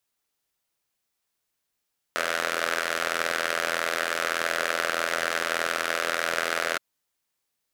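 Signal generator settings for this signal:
pulse-train model of a four-cylinder engine, steady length 4.62 s, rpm 2,500, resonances 590/1,400 Hz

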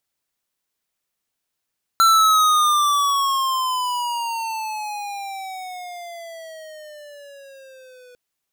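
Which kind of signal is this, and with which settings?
pitch glide with a swell square, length 6.15 s, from 1,350 Hz, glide −17.5 semitones, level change −33 dB, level −13 dB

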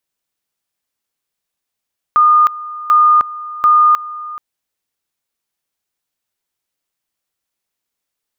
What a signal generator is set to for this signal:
tone at two levels in turn 1,220 Hz −6 dBFS, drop 18 dB, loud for 0.31 s, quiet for 0.43 s, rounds 3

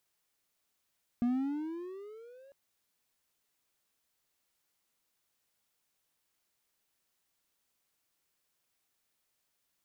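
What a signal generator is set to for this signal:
pitch glide with a swell triangle, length 1.30 s, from 236 Hz, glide +15 semitones, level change −28.5 dB, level −23.5 dB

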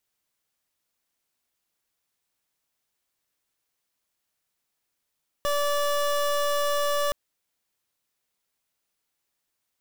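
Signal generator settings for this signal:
pulse wave 579 Hz, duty 26% −24.5 dBFS 1.67 s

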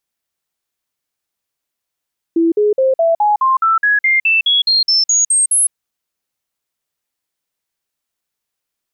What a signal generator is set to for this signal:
stepped sweep 332 Hz up, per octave 3, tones 16, 0.16 s, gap 0.05 s −9.5 dBFS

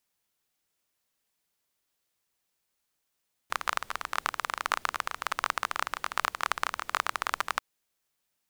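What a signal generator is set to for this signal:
rain-like ticks over hiss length 4.09 s, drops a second 22, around 1,200 Hz, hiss −22.5 dB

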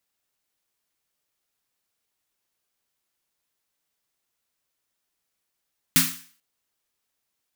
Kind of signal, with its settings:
synth snare length 0.44 s, tones 170 Hz, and 260 Hz, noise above 1,200 Hz, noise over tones 7 dB, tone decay 0.37 s, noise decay 0.46 s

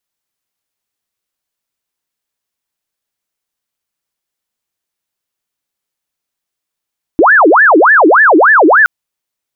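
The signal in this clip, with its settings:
siren wail 301–1,770 Hz 3.4 per second sine −3 dBFS 1.67 s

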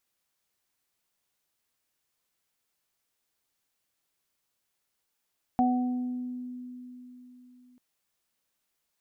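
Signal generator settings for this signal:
harmonic partials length 2.19 s, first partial 249 Hz, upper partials −19/0.5 dB, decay 3.87 s, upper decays 1.53/0.89 s, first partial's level −22 dB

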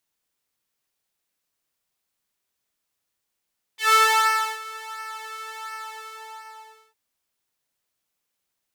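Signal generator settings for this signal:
subtractive patch with pulse-width modulation A4, sub −27.5 dB, filter highpass, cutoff 790 Hz, Q 2.2, filter envelope 2 octaves, filter decay 0.10 s, filter sustain 30%, attack 141 ms, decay 0.67 s, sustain −20.5 dB, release 1.22 s, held 1.94 s, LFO 1.4 Hz, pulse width 30%, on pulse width 18%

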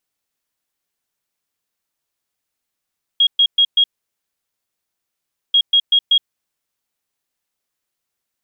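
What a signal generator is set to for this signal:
beeps in groups sine 3,280 Hz, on 0.07 s, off 0.12 s, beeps 4, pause 1.70 s, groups 2, −9 dBFS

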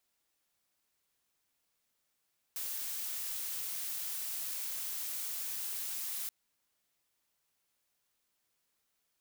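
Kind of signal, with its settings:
noise blue, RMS −38.5 dBFS 3.73 s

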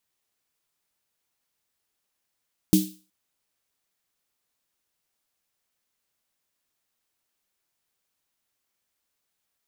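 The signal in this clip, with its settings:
synth snare length 0.37 s, tones 190 Hz, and 310 Hz, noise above 3,100 Hz, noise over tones −9.5 dB, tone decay 0.32 s, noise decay 0.39 s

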